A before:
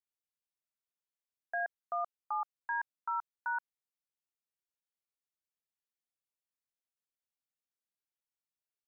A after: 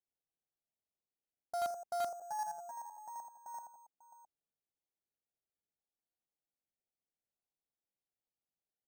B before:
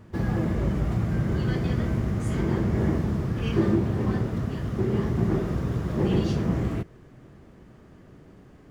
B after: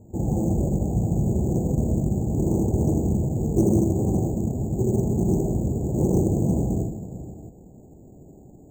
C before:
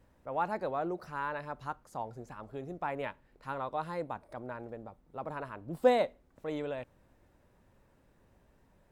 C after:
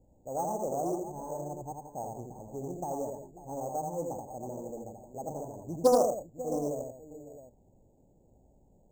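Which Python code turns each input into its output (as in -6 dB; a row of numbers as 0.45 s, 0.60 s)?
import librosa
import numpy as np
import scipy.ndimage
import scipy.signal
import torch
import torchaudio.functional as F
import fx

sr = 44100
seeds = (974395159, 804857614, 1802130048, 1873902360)

p1 = scipy.signal.sosfilt(scipy.signal.ellip(4, 1.0, 40, 810.0, 'lowpass', fs=sr, output='sos'), x)
p2 = p1 + fx.echo_multitap(p1, sr, ms=(82, 170, 544, 662), db=(-3.5, -11.0, -16.0, -13.5), dry=0)
p3 = np.repeat(scipy.signal.resample_poly(p2, 1, 6), 6)[:len(p2)]
p4 = fx.doppler_dist(p3, sr, depth_ms=0.21)
y = F.gain(torch.from_numpy(p4), 1.5).numpy()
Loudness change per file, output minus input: -4.0 LU, +2.5 LU, +2.0 LU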